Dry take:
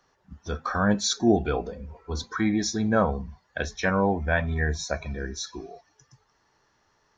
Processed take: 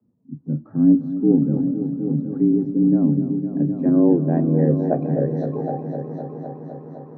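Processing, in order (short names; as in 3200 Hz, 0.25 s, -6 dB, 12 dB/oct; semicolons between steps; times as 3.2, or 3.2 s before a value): low-pass sweep 170 Hz -> 870 Hz, 3.16–6.15; frequency shift +75 Hz; multi-head echo 0.255 s, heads all three, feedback 59%, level -12.5 dB; gain +6.5 dB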